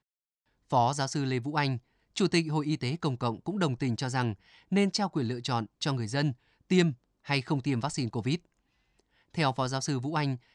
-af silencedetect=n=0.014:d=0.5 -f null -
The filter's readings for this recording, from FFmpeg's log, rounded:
silence_start: 0.00
silence_end: 0.72 | silence_duration: 0.72
silence_start: 8.36
silence_end: 9.35 | silence_duration: 0.98